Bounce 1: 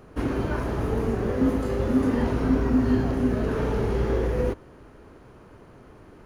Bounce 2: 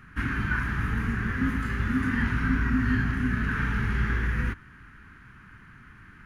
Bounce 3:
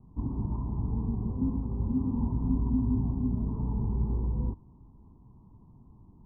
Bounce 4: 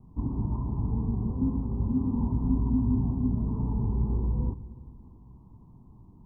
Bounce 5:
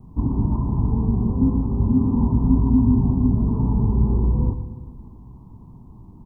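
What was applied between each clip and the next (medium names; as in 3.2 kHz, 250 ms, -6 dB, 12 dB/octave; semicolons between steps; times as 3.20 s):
FFT filter 210 Hz 0 dB, 560 Hz -26 dB, 1.6 kHz +12 dB, 4.3 kHz -4 dB
steep low-pass 1 kHz 96 dB/octave; trim -2 dB
reverberation RT60 2.2 s, pre-delay 7 ms, DRR 15.5 dB; trim +2 dB
feedback delay 116 ms, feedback 42%, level -12 dB; trim +8.5 dB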